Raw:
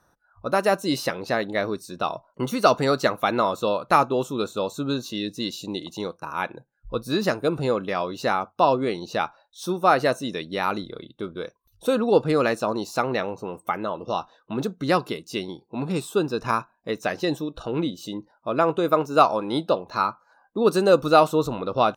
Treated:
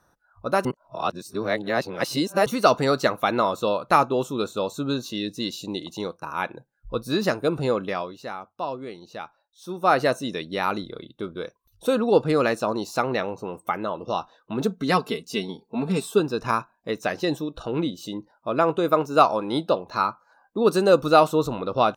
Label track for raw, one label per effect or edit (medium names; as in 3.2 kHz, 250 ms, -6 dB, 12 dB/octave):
0.650000	2.460000	reverse
7.870000	9.950000	dip -11 dB, fades 0.31 s
14.610000	16.200000	comb 4.5 ms, depth 69%